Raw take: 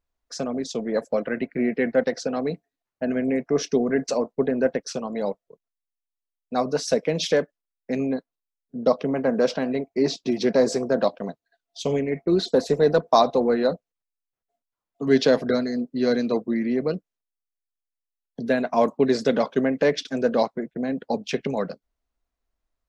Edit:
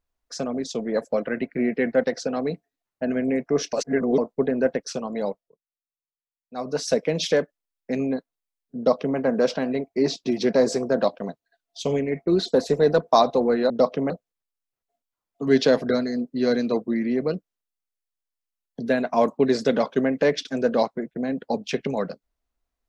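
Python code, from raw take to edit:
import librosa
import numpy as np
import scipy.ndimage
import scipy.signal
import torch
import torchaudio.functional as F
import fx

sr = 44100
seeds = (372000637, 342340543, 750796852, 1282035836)

y = fx.edit(x, sr, fx.reverse_span(start_s=3.73, length_s=0.45),
    fx.fade_down_up(start_s=5.24, length_s=1.59, db=-20.0, fade_s=0.36),
    fx.duplicate(start_s=8.77, length_s=0.4, to_s=13.7), tone=tone)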